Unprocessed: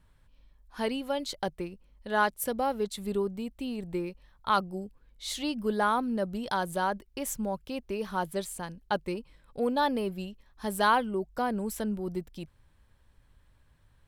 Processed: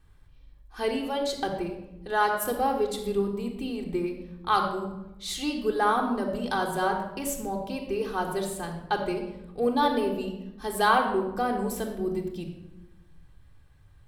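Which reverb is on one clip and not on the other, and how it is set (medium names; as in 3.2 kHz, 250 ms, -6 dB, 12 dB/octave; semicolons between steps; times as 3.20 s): simulated room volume 3800 m³, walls furnished, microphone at 3.7 m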